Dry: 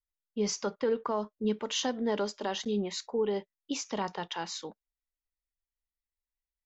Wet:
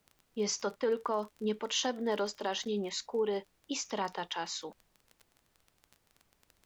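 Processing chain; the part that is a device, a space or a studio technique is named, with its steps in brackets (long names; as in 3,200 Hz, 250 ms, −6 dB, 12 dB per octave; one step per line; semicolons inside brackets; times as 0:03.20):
low-shelf EQ 180 Hz −11.5 dB
vinyl LP (surface crackle 22 per second −41 dBFS; pink noise bed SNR 37 dB)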